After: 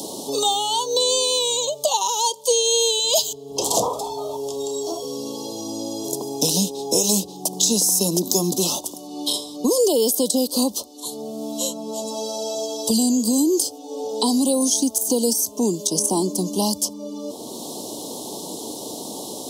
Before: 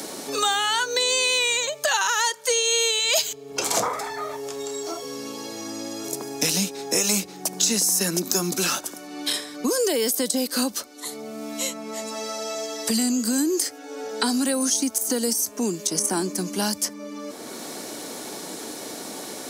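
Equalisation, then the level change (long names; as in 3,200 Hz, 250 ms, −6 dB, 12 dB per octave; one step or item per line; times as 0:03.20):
elliptic band-stop filter 990–3,200 Hz, stop band 70 dB
low-shelf EQ 94 Hz +6.5 dB
dynamic equaliser 500 Hz, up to +3 dB, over −38 dBFS, Q 1.3
+3.0 dB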